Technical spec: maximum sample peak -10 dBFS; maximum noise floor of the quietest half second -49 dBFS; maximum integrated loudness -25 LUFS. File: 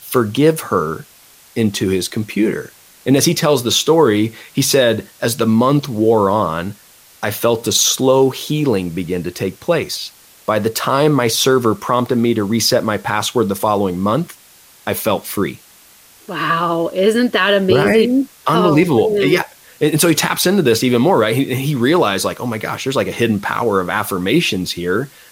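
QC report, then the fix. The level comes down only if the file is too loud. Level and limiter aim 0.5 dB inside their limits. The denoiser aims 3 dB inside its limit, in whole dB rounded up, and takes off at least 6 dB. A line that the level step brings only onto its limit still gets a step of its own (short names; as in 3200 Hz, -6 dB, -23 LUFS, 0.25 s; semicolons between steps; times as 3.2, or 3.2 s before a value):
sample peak -2.5 dBFS: fail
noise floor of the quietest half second -46 dBFS: fail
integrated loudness -16.0 LUFS: fail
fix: gain -9.5 dB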